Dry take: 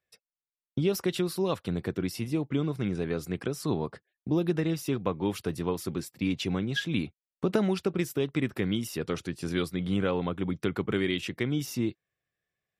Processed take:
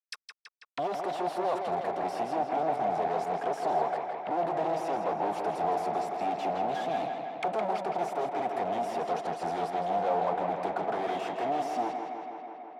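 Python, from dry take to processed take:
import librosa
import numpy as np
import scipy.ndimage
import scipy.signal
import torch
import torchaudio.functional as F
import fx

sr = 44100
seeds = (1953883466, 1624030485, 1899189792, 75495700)

p1 = scipy.signal.sosfilt(scipy.signal.butter(4, 140.0, 'highpass', fs=sr, output='sos'), x)
p2 = fx.peak_eq(p1, sr, hz=8600.0, db=14.5, octaves=2.3)
p3 = fx.fuzz(p2, sr, gain_db=44.0, gate_db=-48.0)
p4 = fx.auto_wah(p3, sr, base_hz=720.0, top_hz=5000.0, q=7.5, full_db=-17.0, direction='down')
y = p4 + fx.echo_tape(p4, sr, ms=163, feedback_pct=84, wet_db=-4, lp_hz=4300.0, drive_db=24.0, wow_cents=9, dry=0)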